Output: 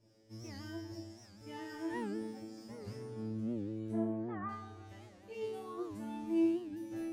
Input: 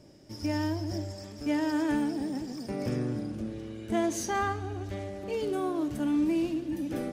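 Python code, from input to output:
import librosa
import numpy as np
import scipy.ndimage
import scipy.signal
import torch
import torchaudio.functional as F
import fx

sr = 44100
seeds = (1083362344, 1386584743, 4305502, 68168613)

y = fx.lowpass(x, sr, hz=1800.0, slope=24, at=(3.91, 4.49))
y = fx.comb_fb(y, sr, f0_hz=110.0, decay_s=0.66, harmonics='all', damping=0.0, mix_pct=100)
y = fx.record_warp(y, sr, rpm=78.0, depth_cents=160.0)
y = y * librosa.db_to_amplitude(2.0)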